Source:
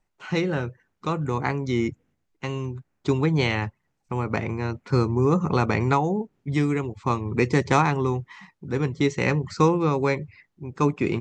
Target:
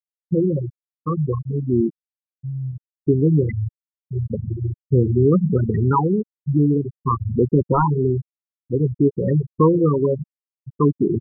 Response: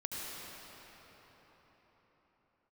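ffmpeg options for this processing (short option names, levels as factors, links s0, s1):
-filter_complex "[0:a]asettb=1/sr,asplit=3[s0][s1][s2];[s0]atrim=end=5.814[s3];[s1]atrim=start=5.81:end=7.87,asetpts=PTS-STARTPTS,afade=t=in:d=0.004:c=qsin,afade=t=out:st=2.056:d=0.004:c=qsin,adynamicequalizer=threshold=0.0158:dfrequency=980:dqfactor=3.9:tfrequency=980:tqfactor=3.9:attack=5:release=100:ratio=0.375:range=2.5:mode=boostabove:tftype=bell[s4];[s2]atrim=start=7.866[s5];[s3][s4]acrossfade=d=0.004:c1=hsin:c2=qsin[s6];[s6][s5]acrossfade=d=0.004:c1=qsin:c2=hsin,acrusher=bits=7:dc=4:mix=0:aa=0.000001,asplit=2[s7][s8];[s8]adelay=140,highpass=300,lowpass=3400,asoftclip=type=hard:threshold=0.2,volume=0.2[s9];[s7][s9]amix=inputs=2:normalize=0,asoftclip=type=tanh:threshold=0.2,lowpass=2800,equalizer=f=760:t=o:w=0.36:g=-6.5,afftfilt=real='re*gte(hypot(re,im),0.251)':imag='im*gte(hypot(re,im),0.251)':win_size=1024:overlap=0.75,volume=2.37"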